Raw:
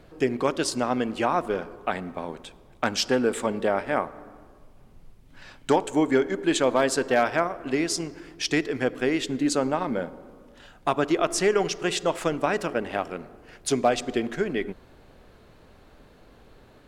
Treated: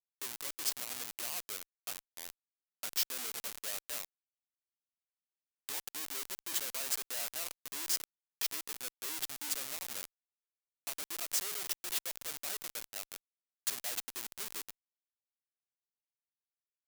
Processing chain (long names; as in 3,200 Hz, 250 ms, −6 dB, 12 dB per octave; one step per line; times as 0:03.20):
comparator with hysteresis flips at −26 dBFS
first difference